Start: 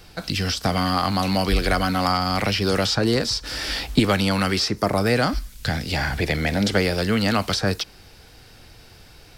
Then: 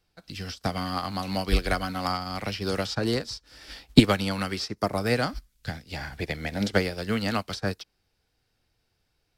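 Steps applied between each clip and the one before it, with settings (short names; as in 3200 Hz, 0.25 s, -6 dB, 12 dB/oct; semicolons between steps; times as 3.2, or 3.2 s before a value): upward expander 2.5:1, over -33 dBFS; gain +4 dB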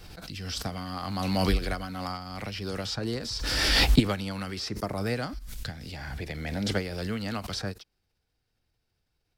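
low shelf 190 Hz +4.5 dB; backwards sustainer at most 27 dB/s; gain -7.5 dB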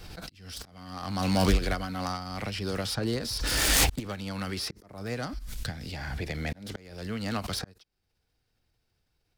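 self-modulated delay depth 0.26 ms; auto swell 0.594 s; gain +2 dB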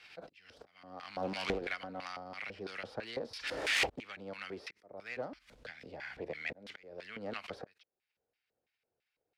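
LFO band-pass square 3 Hz 530–2300 Hz; Doppler distortion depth 0.64 ms; gain +1.5 dB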